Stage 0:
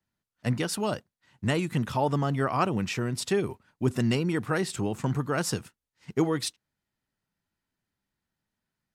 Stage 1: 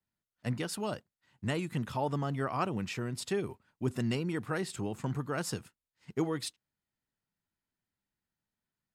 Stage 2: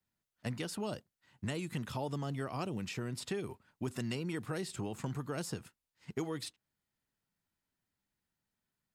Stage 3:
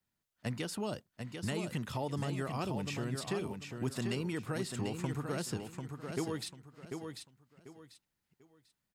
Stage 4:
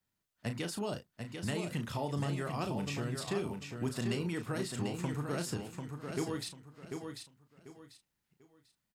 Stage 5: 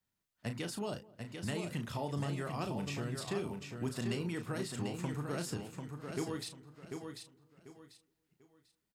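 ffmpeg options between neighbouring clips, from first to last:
-af "bandreject=f=5800:w=16,volume=0.473"
-filter_complex "[0:a]acrossover=split=690|2900[s0][s1][s2];[s0]acompressor=threshold=0.0126:ratio=4[s3];[s1]acompressor=threshold=0.00316:ratio=4[s4];[s2]acompressor=threshold=0.00501:ratio=4[s5];[s3][s4][s5]amix=inputs=3:normalize=0,volume=1.26"
-af "aecho=1:1:743|1486|2229:0.501|0.135|0.0365,volume=1.12"
-filter_complex "[0:a]asplit=2[s0][s1];[s1]adelay=35,volume=0.398[s2];[s0][s2]amix=inputs=2:normalize=0"
-filter_complex "[0:a]asplit=2[s0][s1];[s1]adelay=209,lowpass=f=880:p=1,volume=0.0891,asplit=2[s2][s3];[s3]adelay=209,lowpass=f=880:p=1,volume=0.53,asplit=2[s4][s5];[s5]adelay=209,lowpass=f=880:p=1,volume=0.53,asplit=2[s6][s7];[s7]adelay=209,lowpass=f=880:p=1,volume=0.53[s8];[s0][s2][s4][s6][s8]amix=inputs=5:normalize=0,volume=0.794"

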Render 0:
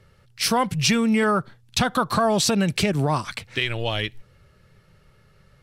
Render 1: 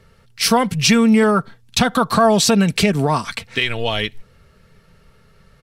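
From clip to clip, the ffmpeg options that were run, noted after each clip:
-af "aecho=1:1:4.4:0.38,volume=1.68"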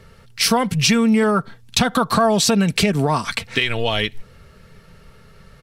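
-af "acompressor=threshold=0.0631:ratio=2,volume=1.78"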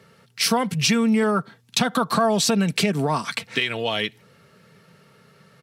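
-af "highpass=f=130:w=0.5412,highpass=f=130:w=1.3066,volume=0.668"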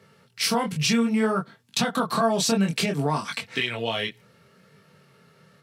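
-af "flanger=delay=20:depth=6.8:speed=0.62"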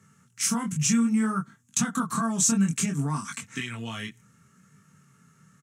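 -af "firequalizer=gain_entry='entry(260,0);entry(380,-12);entry(550,-19);entry(1200,-2);entry(2200,-8);entry(4500,-14);entry(6600,10);entry(12000,-3)':delay=0.05:min_phase=1"

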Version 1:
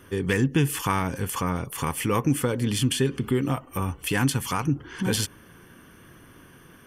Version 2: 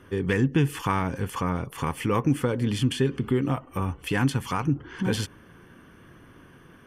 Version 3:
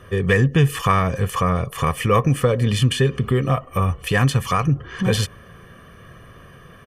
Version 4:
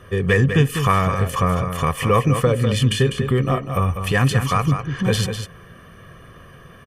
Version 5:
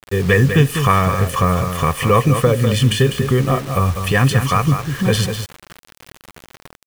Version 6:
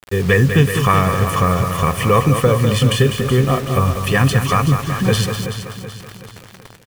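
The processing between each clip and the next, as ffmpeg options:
-af "lowpass=f=2700:p=1"
-af "aecho=1:1:1.7:0.69,volume=2"
-af "aecho=1:1:199:0.398"
-af "acrusher=bits=5:mix=0:aa=0.000001,volume=1.41"
-af "aecho=1:1:378|756|1134|1512|1890:0.316|0.145|0.0669|0.0308|0.0142"

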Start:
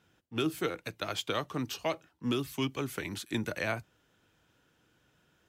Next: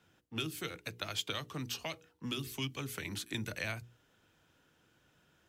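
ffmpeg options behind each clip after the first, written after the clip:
-filter_complex "[0:a]bandreject=f=60:t=h:w=6,bandreject=f=120:t=h:w=6,bandreject=f=180:t=h:w=6,bandreject=f=240:t=h:w=6,bandreject=f=300:t=h:w=6,bandreject=f=360:t=h:w=6,bandreject=f=420:t=h:w=6,bandreject=f=480:t=h:w=6,acrossover=split=160|2000[s0][s1][s2];[s1]acompressor=threshold=0.00794:ratio=6[s3];[s0][s3][s2]amix=inputs=3:normalize=0"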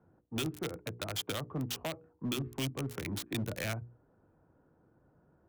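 -filter_complex "[0:a]acrossover=split=1100[s0][s1];[s1]acrusher=bits=5:mix=0:aa=0.000001[s2];[s0][s2]amix=inputs=2:normalize=0,volume=56.2,asoftclip=hard,volume=0.0178,volume=1.88"

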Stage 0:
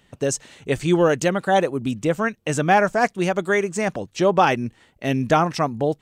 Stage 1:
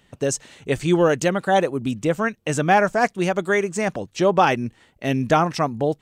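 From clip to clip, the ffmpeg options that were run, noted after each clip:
-af anull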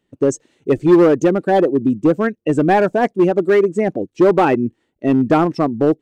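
-filter_complex "[0:a]equalizer=f=330:w=1.2:g=12.5,afftdn=nr=16:nf=-22,asplit=2[s0][s1];[s1]aeval=exprs='0.355*(abs(mod(val(0)/0.355+3,4)-2)-1)':c=same,volume=0.531[s2];[s0][s2]amix=inputs=2:normalize=0,volume=0.668"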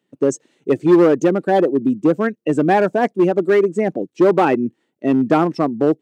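-af "highpass=f=140:w=0.5412,highpass=f=140:w=1.3066,volume=0.891"

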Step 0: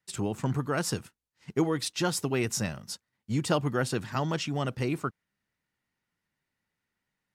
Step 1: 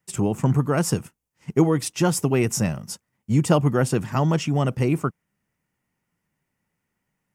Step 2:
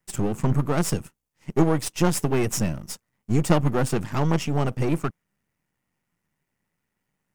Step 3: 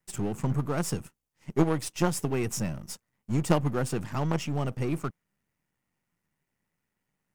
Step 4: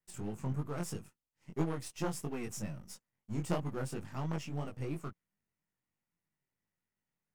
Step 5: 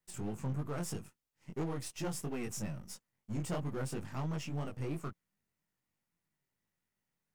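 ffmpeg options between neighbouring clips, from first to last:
-af "equalizer=f=160:t=o:w=0.67:g=4,equalizer=f=1600:t=o:w=0.67:g=-5,equalizer=f=4000:t=o:w=0.67:g=-12,volume=2.37"
-af "aeval=exprs='if(lt(val(0),0),0.251*val(0),val(0))':c=same,volume=1.26"
-af "aeval=exprs='0.631*(cos(1*acos(clip(val(0)/0.631,-1,1)))-cos(1*PI/2))+0.0501*(cos(8*acos(clip(val(0)/0.631,-1,1)))-cos(8*PI/2))':c=same,volume=0.708"
-af "flanger=delay=19:depth=3.9:speed=3,volume=0.447"
-af "asoftclip=type=tanh:threshold=0.0224,volume=1.33"

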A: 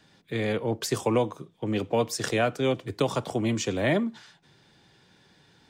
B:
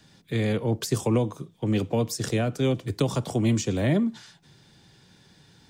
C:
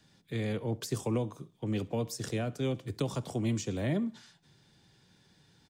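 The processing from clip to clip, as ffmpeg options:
-filter_complex "[0:a]bass=f=250:g=7,treble=f=4000:g=7,acrossover=split=480[s0][s1];[s1]acompressor=threshold=0.0316:ratio=6[s2];[s0][s2]amix=inputs=2:normalize=0"
-af "aecho=1:1:67|134|201:0.0668|0.0294|0.0129,volume=0.398"

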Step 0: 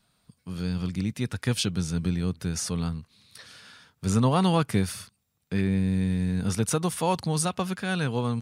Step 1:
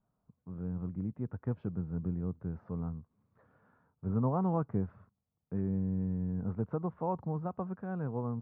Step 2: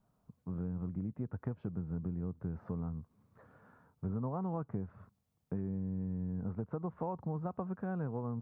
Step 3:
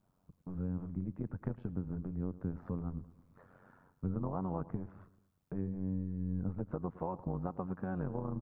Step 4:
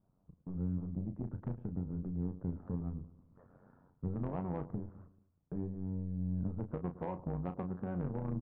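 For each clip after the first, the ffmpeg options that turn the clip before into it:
-af "lowpass=f=1100:w=0.5412,lowpass=f=1100:w=1.3066,volume=0.398"
-af "acompressor=threshold=0.01:ratio=6,volume=1.88"
-af "tremolo=f=92:d=0.857,aecho=1:1:110|220|330|440:0.126|0.0667|0.0354|0.0187,volume=1.5"
-filter_complex "[0:a]adynamicsmooth=sensitivity=1:basefreq=1000,asoftclip=type=tanh:threshold=0.0376,asplit=2[s0][s1];[s1]adelay=34,volume=0.355[s2];[s0][s2]amix=inputs=2:normalize=0,volume=1.12"

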